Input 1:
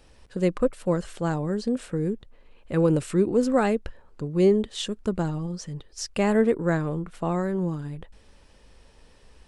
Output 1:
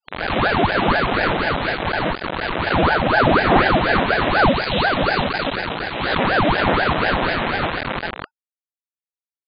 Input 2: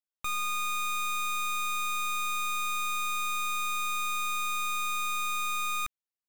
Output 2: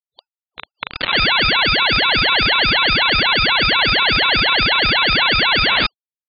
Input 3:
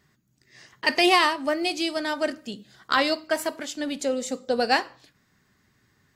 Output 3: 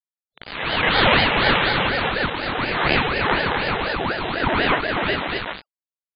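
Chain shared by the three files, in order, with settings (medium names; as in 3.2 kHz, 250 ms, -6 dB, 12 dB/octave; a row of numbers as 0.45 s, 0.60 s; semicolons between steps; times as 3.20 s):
reverse spectral sustain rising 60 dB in 1.57 s; on a send: bouncing-ball echo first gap 390 ms, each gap 0.6×, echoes 5; on the sum: bit crusher 4-bit; FFT band-pass 290–3800 Hz; ring modulator with a swept carrier 670 Hz, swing 80%, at 4.1 Hz; peak normalisation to -1.5 dBFS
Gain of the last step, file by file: +6.0 dB, +22.0 dB, +1.5 dB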